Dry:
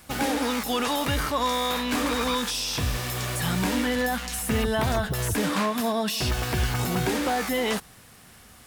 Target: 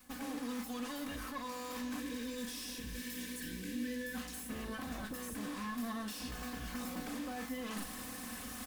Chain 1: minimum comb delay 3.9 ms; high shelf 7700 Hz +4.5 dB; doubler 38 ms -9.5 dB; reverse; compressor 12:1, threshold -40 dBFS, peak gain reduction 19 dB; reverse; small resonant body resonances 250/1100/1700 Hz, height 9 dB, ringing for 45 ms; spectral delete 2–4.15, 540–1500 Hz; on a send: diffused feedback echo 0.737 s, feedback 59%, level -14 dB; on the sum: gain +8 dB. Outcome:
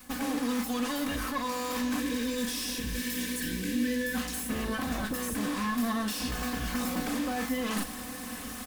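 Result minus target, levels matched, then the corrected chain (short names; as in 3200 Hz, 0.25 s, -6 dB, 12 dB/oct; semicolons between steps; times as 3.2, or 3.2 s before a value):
compressor: peak gain reduction -10 dB
minimum comb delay 3.9 ms; high shelf 7700 Hz +4.5 dB; doubler 38 ms -9.5 dB; reverse; compressor 12:1, threshold -51 dBFS, peak gain reduction 29 dB; reverse; small resonant body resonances 250/1100/1700 Hz, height 9 dB, ringing for 45 ms; spectral delete 2–4.15, 540–1500 Hz; on a send: diffused feedback echo 0.737 s, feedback 59%, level -14 dB; on the sum: gain +8 dB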